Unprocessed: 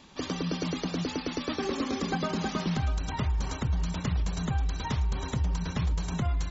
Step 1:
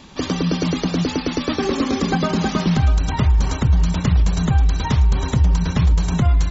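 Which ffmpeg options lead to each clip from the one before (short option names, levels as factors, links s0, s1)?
-af "lowshelf=f=240:g=4.5,volume=2.82"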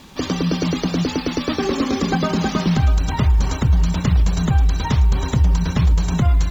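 -af "acrusher=bits=7:mix=0:aa=0.5"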